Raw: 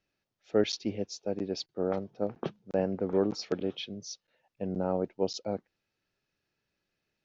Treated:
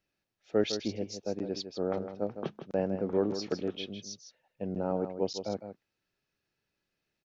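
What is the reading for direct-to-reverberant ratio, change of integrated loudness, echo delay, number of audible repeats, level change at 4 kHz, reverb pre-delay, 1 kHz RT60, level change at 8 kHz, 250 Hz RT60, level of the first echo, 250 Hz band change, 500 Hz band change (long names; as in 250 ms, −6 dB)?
no reverb audible, −1.0 dB, 158 ms, 1, −1.0 dB, no reverb audible, no reverb audible, can't be measured, no reverb audible, −9.5 dB, −1.0 dB, −1.0 dB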